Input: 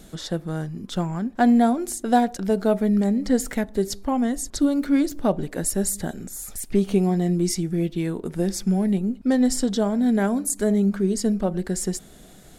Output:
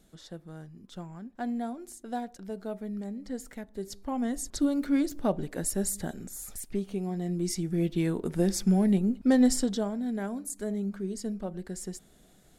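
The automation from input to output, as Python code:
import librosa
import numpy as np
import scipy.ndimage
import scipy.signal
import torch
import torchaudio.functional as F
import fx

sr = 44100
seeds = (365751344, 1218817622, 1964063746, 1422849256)

y = fx.gain(x, sr, db=fx.line((3.65, -16.0), (4.35, -6.0), (6.54, -6.0), (6.9, -14.0), (7.98, -2.0), (9.47, -2.0), (10.05, -12.0)))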